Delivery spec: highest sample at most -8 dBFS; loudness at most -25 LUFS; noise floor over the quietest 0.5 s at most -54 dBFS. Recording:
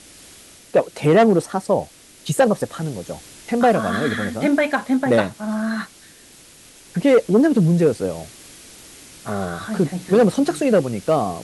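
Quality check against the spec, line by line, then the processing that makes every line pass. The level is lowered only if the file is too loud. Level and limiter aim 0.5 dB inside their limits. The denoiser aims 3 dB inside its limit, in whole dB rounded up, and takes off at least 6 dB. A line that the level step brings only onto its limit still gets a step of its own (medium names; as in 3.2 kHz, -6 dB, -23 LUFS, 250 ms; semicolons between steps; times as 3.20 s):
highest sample -3.5 dBFS: fail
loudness -19.5 LUFS: fail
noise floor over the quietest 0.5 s -47 dBFS: fail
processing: noise reduction 6 dB, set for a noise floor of -47 dBFS; trim -6 dB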